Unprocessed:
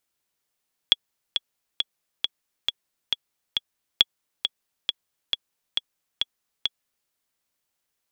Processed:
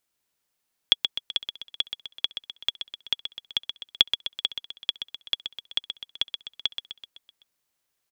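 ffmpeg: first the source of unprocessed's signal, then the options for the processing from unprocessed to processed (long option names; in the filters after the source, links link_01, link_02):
-f lavfi -i "aevalsrc='pow(10,(-1.5-8*gte(mod(t,7*60/136),60/136))/20)*sin(2*PI*3360*mod(t,60/136))*exp(-6.91*mod(t,60/136)/0.03)':duration=6.17:sample_rate=44100"
-af "aecho=1:1:127|254|381|508|635|762:0.398|0.215|0.116|0.0627|0.0339|0.0183"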